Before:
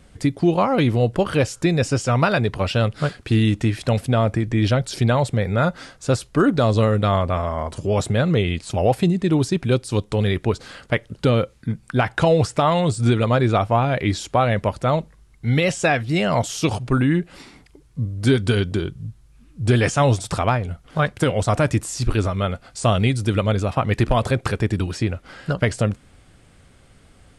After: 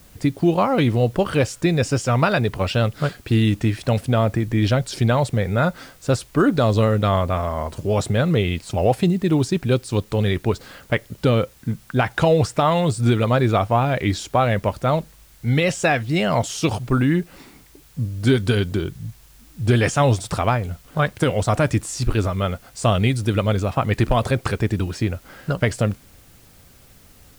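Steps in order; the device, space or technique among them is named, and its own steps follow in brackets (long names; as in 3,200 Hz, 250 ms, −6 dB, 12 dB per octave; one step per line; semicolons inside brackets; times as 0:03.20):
plain cassette with noise reduction switched in (one half of a high-frequency compander decoder only; tape wow and flutter 22 cents; white noise bed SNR 33 dB)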